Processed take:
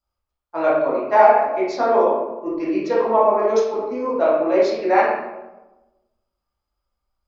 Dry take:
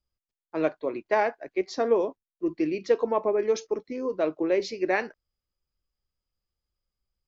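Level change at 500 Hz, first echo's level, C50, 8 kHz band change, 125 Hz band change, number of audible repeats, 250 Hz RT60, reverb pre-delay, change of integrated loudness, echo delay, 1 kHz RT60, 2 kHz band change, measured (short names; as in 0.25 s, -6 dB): +8.5 dB, none, 0.0 dB, n/a, n/a, none, 1.3 s, 11 ms, +9.0 dB, none, 1.0 s, +6.0 dB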